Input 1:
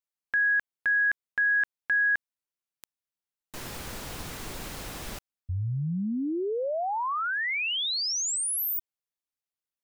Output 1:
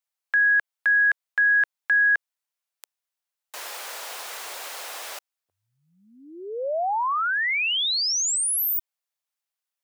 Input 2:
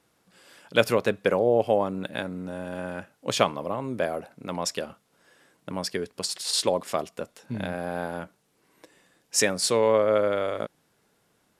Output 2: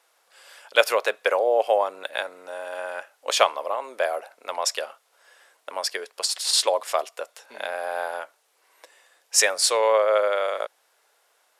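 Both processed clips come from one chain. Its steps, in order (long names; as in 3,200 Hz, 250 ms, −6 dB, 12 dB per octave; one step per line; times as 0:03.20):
high-pass filter 550 Hz 24 dB per octave
level +5 dB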